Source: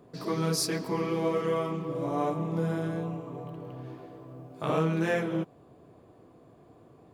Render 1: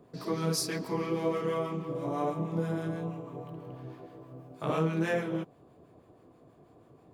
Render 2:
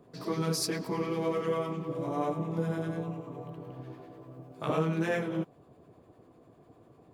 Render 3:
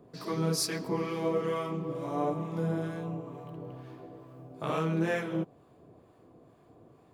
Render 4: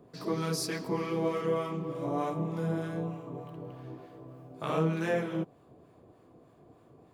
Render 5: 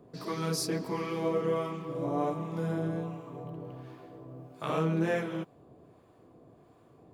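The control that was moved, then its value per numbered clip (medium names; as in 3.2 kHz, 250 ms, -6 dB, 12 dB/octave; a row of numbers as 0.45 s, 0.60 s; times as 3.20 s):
harmonic tremolo, rate: 6.2 Hz, 10 Hz, 2.2 Hz, 3.3 Hz, 1.4 Hz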